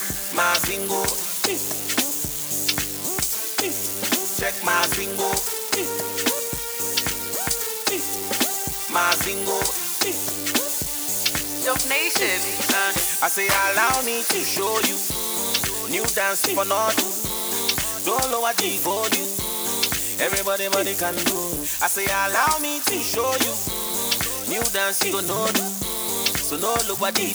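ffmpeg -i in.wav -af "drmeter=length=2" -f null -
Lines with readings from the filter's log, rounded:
Channel 1: DR: 12.9
Overall DR: 12.9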